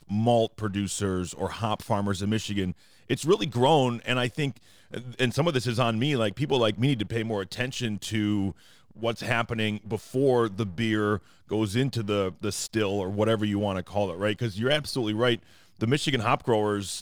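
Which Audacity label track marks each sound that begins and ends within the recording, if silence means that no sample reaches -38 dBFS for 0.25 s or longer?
3.100000	4.570000	sound
4.930000	8.520000	sound
8.970000	11.190000	sound
11.510000	15.370000	sound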